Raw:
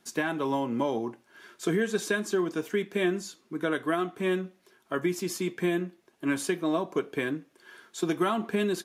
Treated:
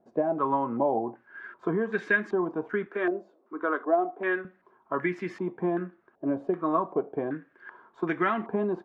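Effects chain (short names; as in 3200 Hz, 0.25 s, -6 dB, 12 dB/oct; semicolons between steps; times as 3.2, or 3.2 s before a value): 2.86–4.45 HPF 280 Hz 24 dB/oct; stepped low-pass 2.6 Hz 640–1900 Hz; gain -2 dB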